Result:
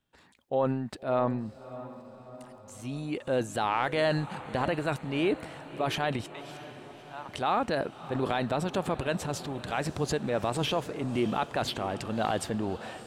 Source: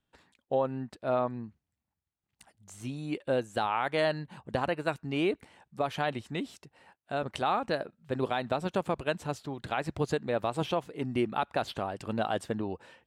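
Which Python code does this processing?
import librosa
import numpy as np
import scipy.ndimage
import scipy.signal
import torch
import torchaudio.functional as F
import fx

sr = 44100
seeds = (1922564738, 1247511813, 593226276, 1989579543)

y = fx.ladder_highpass(x, sr, hz=830.0, resonance_pct=70, at=(6.26, 7.29))
y = fx.transient(y, sr, attack_db=-3, sustain_db=8)
y = fx.echo_diffused(y, sr, ms=616, feedback_pct=59, wet_db=-15)
y = y * librosa.db_to_amplitude(1.5)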